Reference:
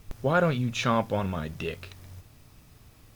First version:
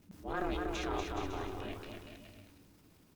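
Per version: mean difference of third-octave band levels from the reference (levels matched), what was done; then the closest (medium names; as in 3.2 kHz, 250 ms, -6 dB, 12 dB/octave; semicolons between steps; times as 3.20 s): 8.0 dB: ring modulator 190 Hz; transient shaper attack -8 dB, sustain +6 dB; on a send: bouncing-ball echo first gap 240 ms, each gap 0.75×, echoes 5; on the sum: trim -9 dB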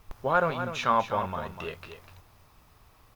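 4.5 dB: graphic EQ 125/250/1000/8000 Hz -6/-4/+9/-4 dB; delay 248 ms -10 dB; trim -3.5 dB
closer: second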